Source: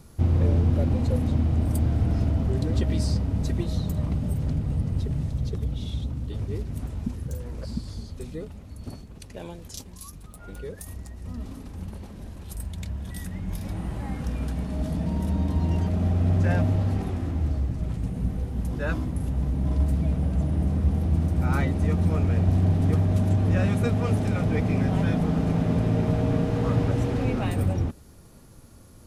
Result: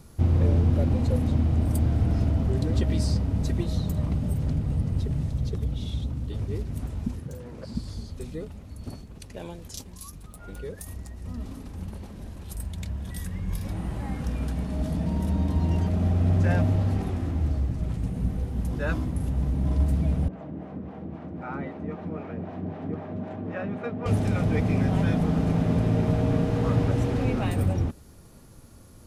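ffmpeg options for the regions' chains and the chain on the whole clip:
ffmpeg -i in.wav -filter_complex "[0:a]asettb=1/sr,asplit=3[link_01][link_02][link_03];[link_01]atrim=end=7.204[link_04];[link_02]atrim=start=7.2:end=7.75,asetpts=PTS-STARTPTS,afade=type=in:duration=0.004:curve=qsin,afade=type=out:start_time=0.546:duration=0.004:curve=qsin,highpass=120,highshelf=frequency=5200:gain=-7.5[link_05];[link_03]atrim=start=7.746[link_06];[link_04][link_05]acrossfade=duration=0.004:curve1=hsin:curve2=qsin[link_07];[link_07][link_06]acrossfade=duration=0.004:curve1=qsin:curve2=hsin,asettb=1/sr,asplit=3[link_08][link_09][link_10];[link_08]atrim=end=13.164[link_11];[link_09]atrim=start=13.16:end=13.67,asetpts=PTS-STARTPTS,afade=type=in:duration=0.004:curve=qsin,afade=type=out:start_time=0.506:duration=0.004:curve=qsin,bandreject=frequency=630:width=6.2,aecho=1:1:1.8:0.35,atrim=end_sample=22491[link_12];[link_10]atrim=start=13.666[link_13];[link_11][link_12]acrossfade=duration=0.004:curve1=hsin:curve2=qsin[link_14];[link_14][link_13]acrossfade=duration=0.004:curve1=qsin:curve2=hsin,asettb=1/sr,asplit=3[link_15][link_16][link_17];[link_15]atrim=end=20.284[link_18];[link_16]atrim=start=20.28:end=24.06,asetpts=PTS-STARTPTS,afade=type=in:duration=0.004:curve=qsin,afade=type=out:start_time=3.776:duration=0.004:curve=qsin,highpass=240,lowpass=2000,acrossover=split=460[link_19][link_20];[link_19]aeval=exprs='val(0)*(1-0.7/2+0.7/2*cos(2*PI*3.8*n/s))':channel_layout=same[link_21];[link_20]aeval=exprs='val(0)*(1-0.7/2-0.7/2*cos(2*PI*3.8*n/s))':channel_layout=same[link_22];[link_21][link_22]amix=inputs=2:normalize=0[link_23];[link_17]atrim=start=24.056[link_24];[link_18][link_23]acrossfade=duration=0.004:curve1=hsin:curve2=qsin[link_25];[link_25][link_24]acrossfade=duration=0.004:curve1=qsin:curve2=hsin" out.wav

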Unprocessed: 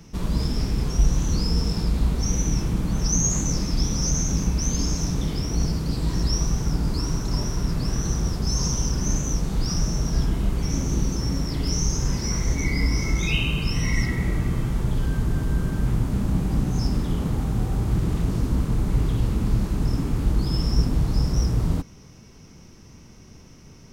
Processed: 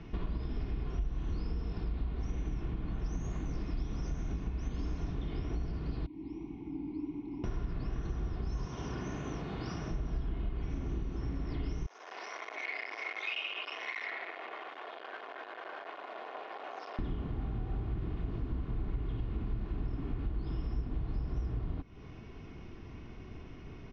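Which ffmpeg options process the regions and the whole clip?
ffmpeg -i in.wav -filter_complex "[0:a]asettb=1/sr,asplit=3[link_01][link_02][link_03];[link_01]atrim=end=6.064[link_04];[link_02]atrim=start=6.06:end=7.44,asetpts=PTS-STARTPTS,afade=type=in:duration=0.004:curve=qsin,afade=type=out:start_time=1.376:duration=0.004:curve=qsin,asplit=3[link_05][link_06][link_07];[link_05]bandpass=frequency=300:width_type=q:width=8,volume=0dB[link_08];[link_06]bandpass=frequency=870:width_type=q:width=8,volume=-6dB[link_09];[link_07]bandpass=frequency=2240:width_type=q:width=8,volume=-9dB[link_10];[link_08][link_09][link_10]amix=inputs=3:normalize=0,equalizer=frequency=1200:width_type=o:width=1.6:gain=-9[link_11];[link_03]atrim=start=7.436[link_12];[link_04][link_11]acrossfade=duration=0.004:curve1=hsin:curve2=qsin[link_13];[link_13][link_12]acrossfade=duration=0.004:curve1=qsin:curve2=hsin,asettb=1/sr,asplit=3[link_14][link_15][link_16];[link_14]atrim=end=8.654[link_17];[link_15]atrim=start=8.65:end=9.91,asetpts=PTS-STARTPTS,afade=type=in:duration=0.004:curve=qsin,afade=type=out:start_time=1.256:duration=0.004:curve=qsin,highpass=130,equalizer=frequency=230:width_type=o:width=1.6:gain=-3.5[link_18];[link_16]atrim=start=9.906[link_19];[link_17][link_18]acrossfade=duration=0.004:curve1=hsin:curve2=qsin[link_20];[link_20][link_19]acrossfade=duration=0.004:curve1=qsin:curve2=hsin,asettb=1/sr,asplit=3[link_21][link_22][link_23];[link_21]atrim=end=11.864[link_24];[link_22]atrim=start=11.86:end=16.99,asetpts=PTS-STARTPTS,afade=type=in:duration=0.004:curve=qsin,afade=type=out:start_time=5.126:duration=0.004:curve=qsin,highshelf=frequency=5900:gain=-5,asoftclip=type=hard:threshold=-26.5dB,highpass=frequency=590:width=0.5412,highpass=frequency=590:width=1.3066[link_25];[link_23]atrim=start=16.986[link_26];[link_24][link_25]acrossfade=duration=0.004:curve1=hsin:curve2=qsin[link_27];[link_27][link_26]acrossfade=duration=0.004:curve1=qsin:curve2=hsin,lowpass=frequency=3300:width=0.5412,lowpass=frequency=3300:width=1.3066,acompressor=threshold=-34dB:ratio=6,aecho=1:1:2.8:0.38" out.wav

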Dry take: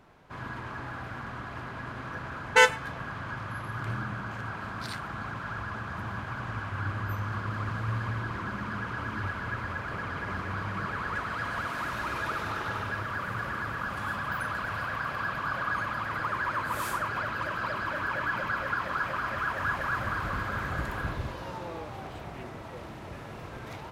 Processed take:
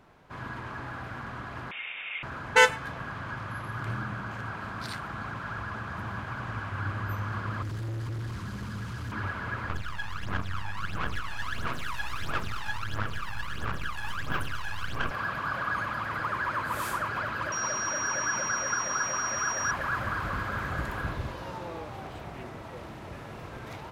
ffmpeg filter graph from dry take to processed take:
ffmpeg -i in.wav -filter_complex "[0:a]asettb=1/sr,asplit=3[link_01][link_02][link_03];[link_01]atrim=end=1.714[link_04];[link_02]atrim=start=1.71:end=2.23,asetpts=PTS-STARTPTS,afade=type=in:duration=0.004:curve=qsin,afade=type=out:start_time=0.516:duration=0.004:curve=qsin,highpass=frequency=490:poles=1,tiltshelf=frequency=710:gain=-7,lowpass=frequency=3200:width_type=q:width=0.5098,lowpass=frequency=3200:width_type=q:width=0.6013,lowpass=frequency=3200:width_type=q:width=0.9,lowpass=frequency=3200:width_type=q:width=2.563,afreqshift=-3800[link_05];[link_03]atrim=start=2.226[link_06];[link_04][link_05]acrossfade=duration=0.004:curve1=hsin:curve2=qsin[link_07];[link_07][link_06]acrossfade=duration=0.004:curve1=qsin:curve2=hsin,asettb=1/sr,asplit=3[link_08][link_09][link_10];[link_08]atrim=end=7.624[link_11];[link_09]atrim=start=7.62:end=9.12,asetpts=PTS-STARTPTS,afade=type=in:duration=0.004:curve=qsin,afade=type=out:start_time=1.496:duration=0.004:curve=qsin,bass=frequency=250:gain=5,treble=frequency=4000:gain=9,acrossover=split=210|3000[link_12][link_13][link_14];[link_13]acompressor=threshold=-44dB:ratio=3:attack=3.2:release=140:knee=2.83:detection=peak[link_15];[link_12][link_15][link_14]amix=inputs=3:normalize=0,asoftclip=type=hard:threshold=-32dB[link_16];[link_10]atrim=start=9.116[link_17];[link_11][link_16]acrossfade=duration=0.004:curve1=hsin:curve2=qsin[link_18];[link_18][link_17]acrossfade=duration=0.004:curve1=qsin:curve2=hsin,asettb=1/sr,asplit=3[link_19][link_20][link_21];[link_19]atrim=end=9.694[link_22];[link_20]atrim=start=9.69:end=15.11,asetpts=PTS-STARTPTS,afade=type=in:duration=0.004:curve=qsin,afade=type=out:start_time=5.416:duration=0.004:curve=qsin,equalizer=frequency=370:width_type=o:width=1.9:gain=-10.5,aeval=exprs='max(val(0),0)':channel_layout=same,aphaser=in_gain=1:out_gain=1:delay=1.2:decay=0.74:speed=1.5:type=sinusoidal[link_23];[link_21]atrim=start=15.106[link_24];[link_22][link_23]acrossfade=duration=0.004:curve1=hsin:curve2=qsin[link_25];[link_25][link_24]acrossfade=duration=0.004:curve1=qsin:curve2=hsin,asettb=1/sr,asplit=3[link_26][link_27][link_28];[link_26]atrim=end=17.524[link_29];[link_27]atrim=start=17.52:end=19.71,asetpts=PTS-STARTPTS,afade=type=in:duration=0.004:curve=qsin,afade=type=out:start_time=2.186:duration=0.004:curve=qsin,lowshelf=frequency=87:gain=-11,aeval=exprs='val(0)+0.0251*sin(2*PI*5700*n/s)':channel_layout=same[link_30];[link_28]atrim=start=19.706[link_31];[link_29][link_30]acrossfade=duration=0.004:curve1=hsin:curve2=qsin[link_32];[link_32][link_31]acrossfade=duration=0.004:curve1=qsin:curve2=hsin" out.wav

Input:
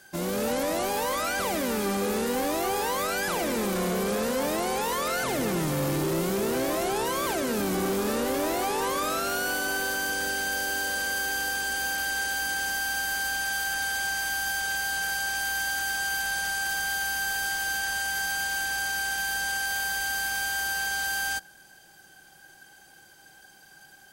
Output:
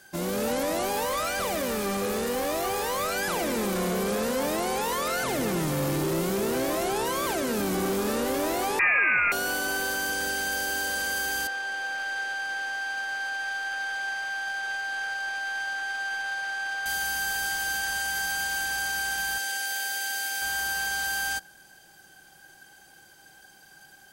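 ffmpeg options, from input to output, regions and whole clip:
ffmpeg -i in.wav -filter_complex "[0:a]asettb=1/sr,asplit=3[link_01][link_02][link_03];[link_01]atrim=end=1.054[link_04];[link_02]atrim=start=1.05:end=3.16,asetpts=PTS-STARTPTS,afade=type=in:duration=0.004:curve=qsin,afade=type=out:start_time=2.106:duration=0.004:curve=qsin,aecho=1:1:1.7:0.34,atrim=end_sample=93051,volume=25dB,asoftclip=hard,volume=-25dB[link_05];[link_03]atrim=start=3.156[link_06];[link_04][link_05]acrossfade=duration=0.004:curve1=hsin:curve2=qsin[link_07];[link_07][link_06]acrossfade=duration=0.004:curve1=qsin:curve2=hsin,asettb=1/sr,asplit=3[link_08][link_09][link_10];[link_08]atrim=end=8.794[link_11];[link_09]atrim=start=8.79:end=9.32,asetpts=PTS-STARTPTS,afade=type=in:duration=0.004:curve=qsin,afade=type=out:start_time=0.526:duration=0.004:curve=qsin,acontrast=64,lowpass=frequency=2400:width_type=q:width=0.5098,lowpass=frequency=2400:width_type=q:width=0.6013,lowpass=frequency=2400:width_type=q:width=0.9,lowpass=frequency=2400:width_type=q:width=2.563,afreqshift=-2800[link_12];[link_10]atrim=start=9.316[link_13];[link_11][link_12]acrossfade=duration=0.004:curve1=hsin:curve2=qsin[link_14];[link_14][link_13]acrossfade=duration=0.004:curve1=qsin:curve2=hsin,asettb=1/sr,asplit=3[link_15][link_16][link_17];[link_15]atrim=end=11.474[link_18];[link_16]atrim=start=11.47:end=16.86,asetpts=PTS-STARTPTS,afade=type=in:duration=0.004:curve=qsin,afade=type=out:start_time=5.386:duration=0.004:curve=qsin,highpass=530,bandreject=frequency=1000:width=14,adynamicsmooth=sensitivity=1.5:basefreq=2400[link_19];[link_17]atrim=start=16.856[link_20];[link_18][link_19]acrossfade=duration=0.004:curve1=hsin:curve2=qsin[link_21];[link_21][link_20]acrossfade=duration=0.004:curve1=qsin:curve2=hsin,asettb=1/sr,asplit=3[link_22][link_23][link_24];[link_22]atrim=end=19.384[link_25];[link_23]atrim=start=19.38:end=20.42,asetpts=PTS-STARTPTS,afade=type=in:duration=0.004:curve=qsin,afade=type=out:start_time=1.036:duration=0.004:curve=qsin,highpass=340,equalizer=frequency=1100:width_type=o:width=0.43:gain=-13.5[link_26];[link_24]atrim=start=20.416[link_27];[link_25][link_26]acrossfade=duration=0.004:curve1=hsin:curve2=qsin[link_28];[link_28][link_27]acrossfade=duration=0.004:curve1=qsin:curve2=hsin" out.wav

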